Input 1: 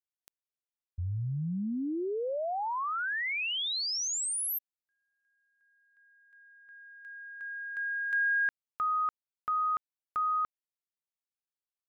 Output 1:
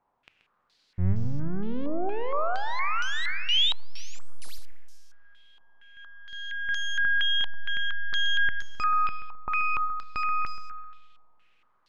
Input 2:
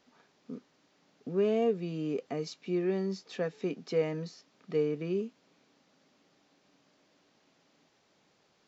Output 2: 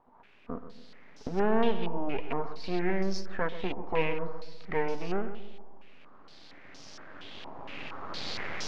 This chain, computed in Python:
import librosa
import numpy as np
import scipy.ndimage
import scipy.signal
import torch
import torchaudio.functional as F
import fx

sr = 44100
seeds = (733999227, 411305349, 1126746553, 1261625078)

y = fx.recorder_agc(x, sr, target_db=-28.0, rise_db_per_s=9.3, max_gain_db=30)
y = fx.peak_eq(y, sr, hz=93.0, db=11.0, octaves=0.32)
y = np.maximum(y, 0.0)
y = fx.quant_dither(y, sr, seeds[0], bits=12, dither='triangular')
y = fx.echo_feedback(y, sr, ms=131, feedback_pct=39, wet_db=-12.0)
y = fx.rev_schroeder(y, sr, rt60_s=1.6, comb_ms=25, drr_db=13.0)
y = fx.filter_held_lowpass(y, sr, hz=4.3, low_hz=930.0, high_hz=5600.0)
y = F.gain(torch.from_numpy(y), 3.0).numpy()